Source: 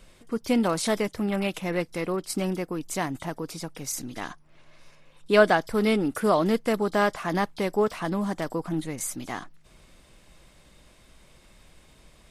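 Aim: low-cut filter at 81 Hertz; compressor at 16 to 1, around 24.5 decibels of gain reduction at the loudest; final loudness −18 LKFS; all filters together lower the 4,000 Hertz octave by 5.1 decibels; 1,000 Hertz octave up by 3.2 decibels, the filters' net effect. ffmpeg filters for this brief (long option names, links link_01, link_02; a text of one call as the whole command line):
ffmpeg -i in.wav -af "highpass=81,equalizer=frequency=1000:width_type=o:gain=4.5,equalizer=frequency=4000:width_type=o:gain=-7.5,acompressor=threshold=-35dB:ratio=16,volume=22dB" out.wav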